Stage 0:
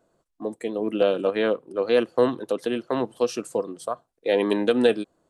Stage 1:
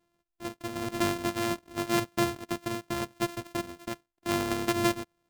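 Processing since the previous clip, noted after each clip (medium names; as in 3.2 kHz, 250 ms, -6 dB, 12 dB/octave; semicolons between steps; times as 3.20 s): sorted samples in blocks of 128 samples; trim -7.5 dB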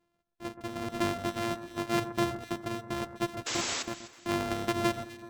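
treble shelf 7.1 kHz -8.5 dB; painted sound noise, 3.46–3.83 s, 230–8000 Hz -32 dBFS; echo whose repeats swap between lows and highs 126 ms, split 1.7 kHz, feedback 61%, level -11 dB; trim -1.5 dB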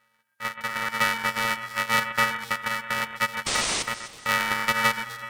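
peaking EQ 11 kHz +10 dB 0.28 oct; in parallel at -2.5 dB: compression, threshold -39 dBFS, peak gain reduction 15 dB; on the sum: ring modulator 1.6 kHz; trim +7.5 dB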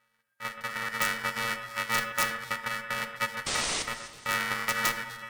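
integer overflow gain 10.5 dB; simulated room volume 160 m³, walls mixed, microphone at 0.33 m; trim -4.5 dB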